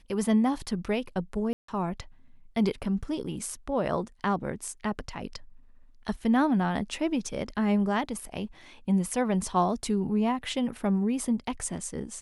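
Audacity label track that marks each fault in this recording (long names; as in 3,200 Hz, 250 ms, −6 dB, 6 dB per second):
1.530000	1.680000	drop-out 154 ms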